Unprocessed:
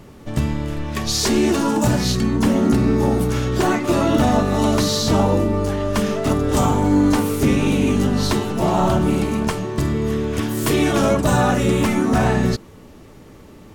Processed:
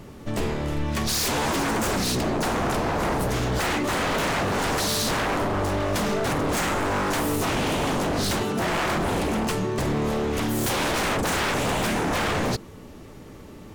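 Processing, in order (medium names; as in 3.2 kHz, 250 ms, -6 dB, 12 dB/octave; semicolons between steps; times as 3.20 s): 8.43–9.02 s: high-pass 190 Hz 6 dB/octave; wavefolder -19.5 dBFS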